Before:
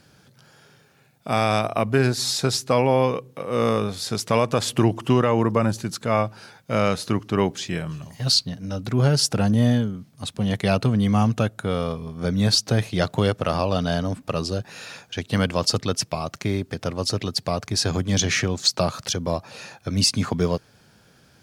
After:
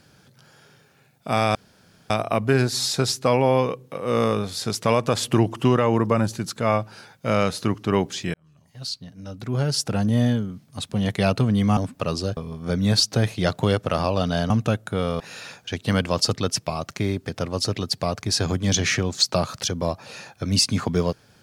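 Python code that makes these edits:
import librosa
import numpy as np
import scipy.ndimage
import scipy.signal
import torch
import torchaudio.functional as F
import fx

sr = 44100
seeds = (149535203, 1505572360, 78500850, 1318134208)

y = fx.edit(x, sr, fx.insert_room_tone(at_s=1.55, length_s=0.55),
    fx.fade_in_span(start_s=7.79, length_s=2.18),
    fx.swap(start_s=11.22, length_s=0.7, other_s=14.05, other_length_s=0.6), tone=tone)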